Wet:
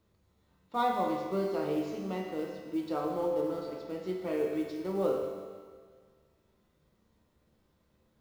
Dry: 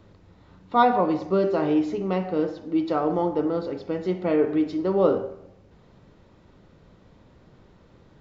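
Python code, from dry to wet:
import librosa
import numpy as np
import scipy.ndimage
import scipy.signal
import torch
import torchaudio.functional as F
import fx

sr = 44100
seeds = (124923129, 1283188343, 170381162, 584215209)

y = fx.law_mismatch(x, sr, coded='A')
y = fx.high_shelf(y, sr, hz=3900.0, db=8.0)
y = fx.comb_fb(y, sr, f0_hz=74.0, decay_s=1.4, harmonics='all', damping=0.0, mix_pct=80)
y = fx.rev_fdn(y, sr, rt60_s=1.8, lf_ratio=0.95, hf_ratio=1.0, size_ms=91.0, drr_db=3.5)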